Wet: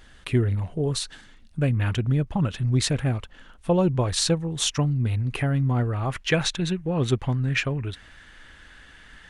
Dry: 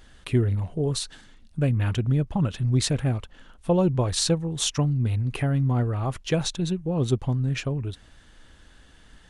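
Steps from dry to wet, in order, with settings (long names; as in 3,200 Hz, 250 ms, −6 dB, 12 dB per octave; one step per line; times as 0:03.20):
parametric band 1,900 Hz +4 dB 1.5 octaves, from 0:06.10 +11.5 dB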